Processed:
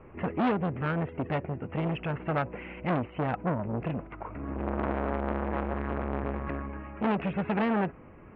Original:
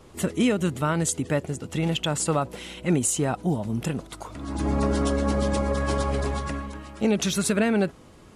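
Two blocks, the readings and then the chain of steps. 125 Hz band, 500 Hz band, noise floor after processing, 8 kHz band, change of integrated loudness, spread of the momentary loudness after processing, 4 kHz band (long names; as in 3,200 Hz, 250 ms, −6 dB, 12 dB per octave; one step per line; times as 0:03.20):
−5.5 dB, −5.5 dB, −50 dBFS, below −40 dB, −6.0 dB, 8 LU, −16.0 dB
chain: Butterworth low-pass 2,600 Hz 72 dB per octave
saturating transformer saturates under 1,000 Hz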